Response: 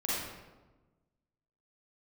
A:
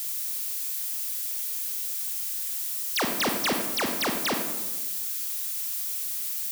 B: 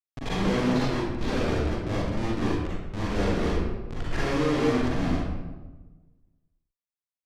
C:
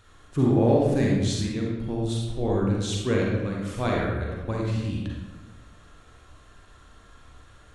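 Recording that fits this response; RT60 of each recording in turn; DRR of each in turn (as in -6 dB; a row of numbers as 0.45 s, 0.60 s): B; 1.2 s, 1.2 s, 1.2 s; 3.5 dB, -8.0 dB, -3.0 dB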